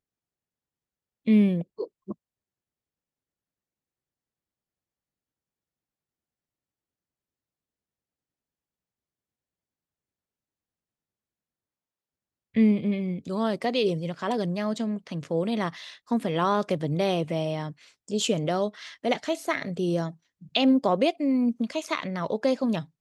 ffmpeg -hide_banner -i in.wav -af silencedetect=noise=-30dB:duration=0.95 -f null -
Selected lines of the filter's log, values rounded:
silence_start: 0.00
silence_end: 1.27 | silence_duration: 1.27
silence_start: 2.12
silence_end: 12.56 | silence_duration: 10.44